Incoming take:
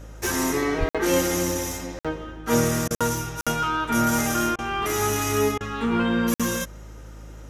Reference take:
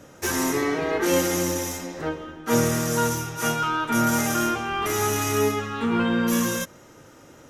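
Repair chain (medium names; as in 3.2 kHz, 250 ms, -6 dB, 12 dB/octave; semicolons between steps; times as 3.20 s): de-hum 53.3 Hz, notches 4; de-plosive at 0.79 s; interpolate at 0.89/1.99/2.95/3.41/6.34 s, 56 ms; interpolate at 2.88/4.56/5.58 s, 25 ms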